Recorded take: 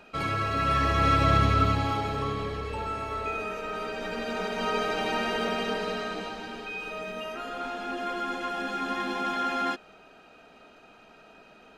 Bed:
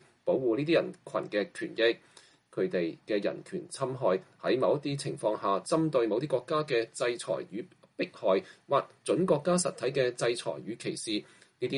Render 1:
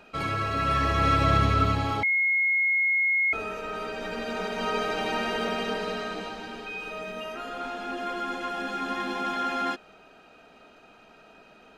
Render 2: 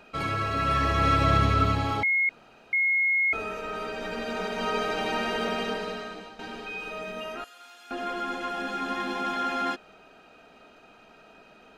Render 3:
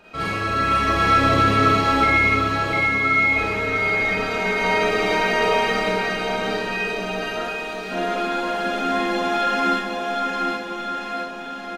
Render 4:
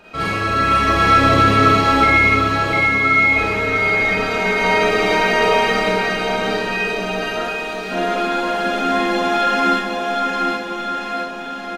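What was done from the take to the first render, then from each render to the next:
2.03–3.33 s: bleep 2.16 kHz -20.5 dBFS
2.29–2.73 s: room tone; 5.63–6.39 s: fade out, to -11 dB; 7.44–7.91 s: differentiator
bouncing-ball echo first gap 760 ms, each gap 0.9×, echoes 5; Schroeder reverb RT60 0.42 s, combs from 33 ms, DRR -5.5 dB
trim +4 dB

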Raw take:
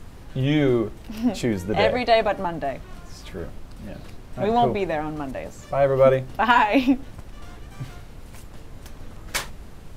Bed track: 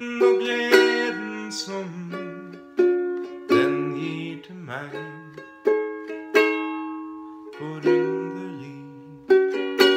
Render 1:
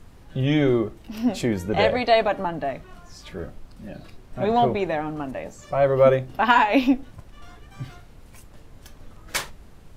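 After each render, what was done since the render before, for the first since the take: noise print and reduce 6 dB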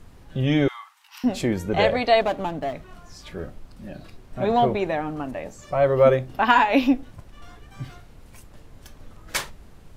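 0.68–1.24 s: steep high-pass 860 Hz 72 dB/octave; 2.21–2.73 s: median filter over 25 samples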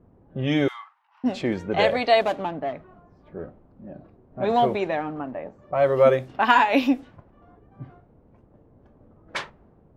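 high-pass 190 Hz 6 dB/octave; level-controlled noise filter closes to 570 Hz, open at -17.5 dBFS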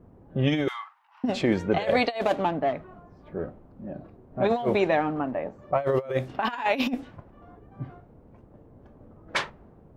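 compressor with a negative ratio -23 dBFS, ratio -0.5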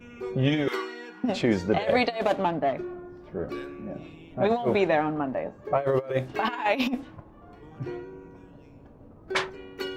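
add bed track -17.5 dB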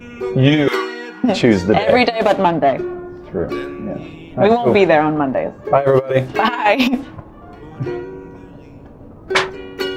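trim +11.5 dB; peak limiter -1 dBFS, peak gain reduction 3 dB

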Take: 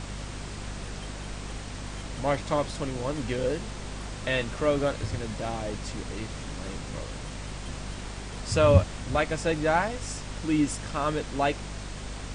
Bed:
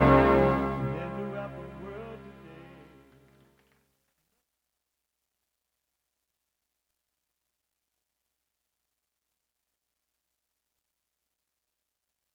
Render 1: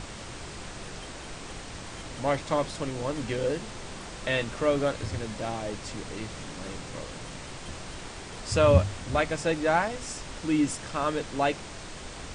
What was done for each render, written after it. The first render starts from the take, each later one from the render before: hum notches 50/100/150/200/250 Hz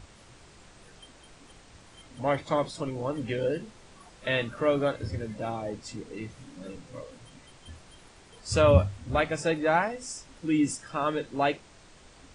noise print and reduce 13 dB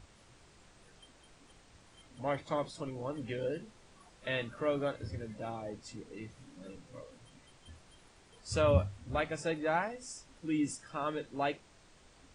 trim -7.5 dB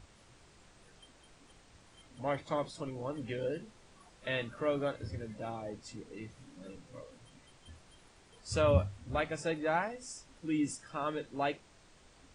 no audible change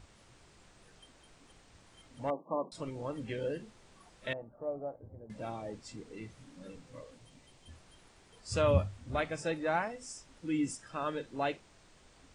2.30–2.72 s: brick-wall FIR band-pass 160–1200 Hz; 4.33–5.30 s: four-pole ladder low-pass 840 Hz, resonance 60%; 7.15–7.71 s: peaking EQ 1.4 kHz -5.5 dB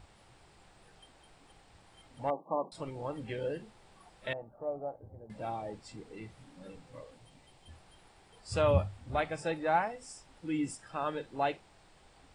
graphic EQ with 31 bands 250 Hz -4 dB, 800 Hz +7 dB, 6.3 kHz -8 dB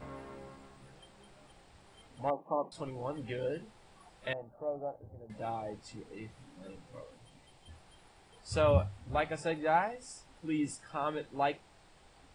add bed -27.5 dB

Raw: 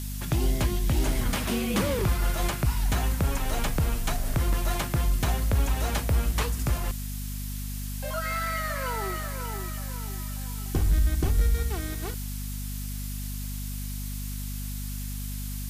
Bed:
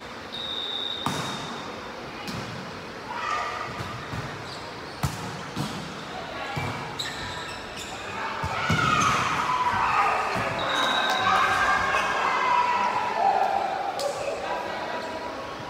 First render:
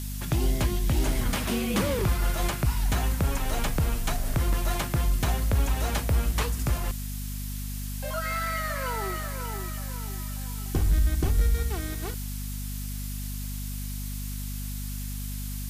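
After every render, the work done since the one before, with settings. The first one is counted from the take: no audible change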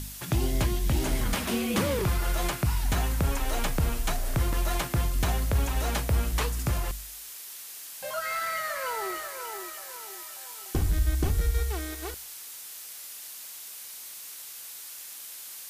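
de-hum 50 Hz, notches 5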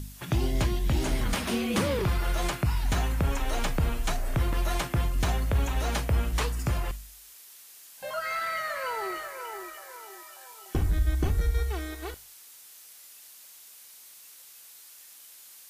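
noise print and reduce 8 dB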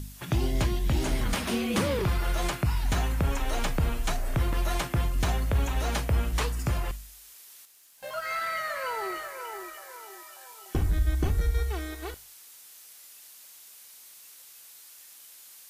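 7.65–8.29 s: companding laws mixed up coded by A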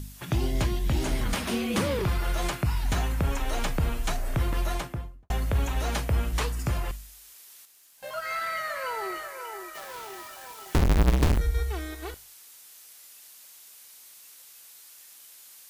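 4.59–5.30 s: studio fade out; 9.75–11.38 s: square wave that keeps the level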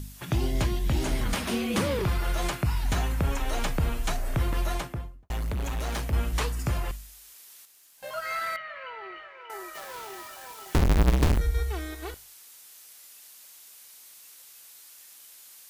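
4.94–6.13 s: hard clipper -27 dBFS; 8.56–9.50 s: four-pole ladder low-pass 3.3 kHz, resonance 50%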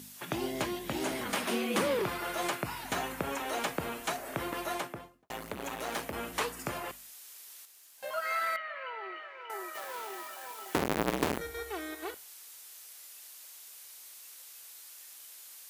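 high-pass 290 Hz 12 dB/octave; dynamic bell 5.2 kHz, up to -4 dB, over -51 dBFS, Q 0.85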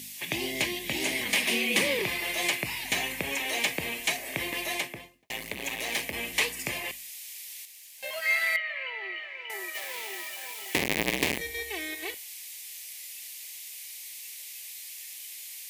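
resonant high shelf 1.7 kHz +7.5 dB, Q 3; band-stop 1.4 kHz, Q 6.4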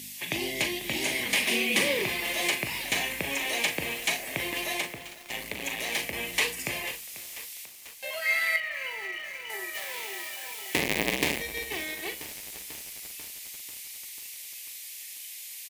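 doubling 40 ms -9.5 dB; bit-crushed delay 492 ms, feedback 80%, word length 6-bit, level -14 dB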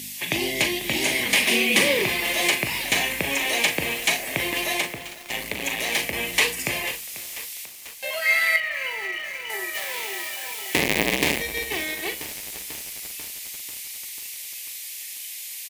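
trim +6 dB; peak limiter -1 dBFS, peak gain reduction 3 dB

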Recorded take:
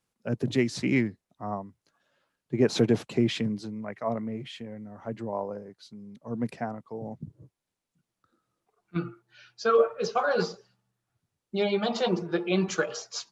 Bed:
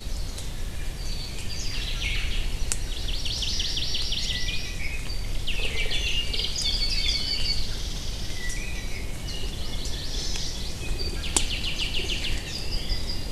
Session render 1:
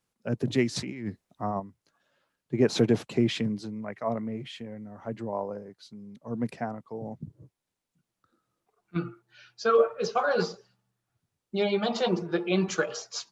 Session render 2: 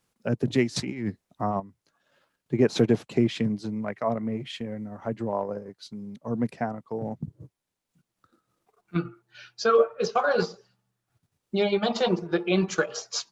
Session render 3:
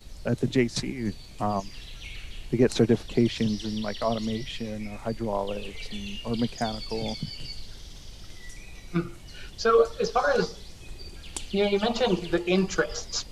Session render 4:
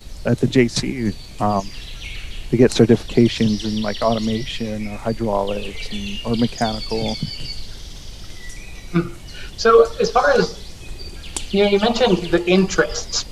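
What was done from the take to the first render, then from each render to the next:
0.76–1.60 s: compressor with a negative ratio -33 dBFS
transient shaper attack 0 dB, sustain -6 dB; in parallel at +1 dB: compression, threshold -34 dBFS, peak gain reduction 16.5 dB
add bed -12.5 dB
trim +8.5 dB; peak limiter -1 dBFS, peak gain reduction 1.5 dB

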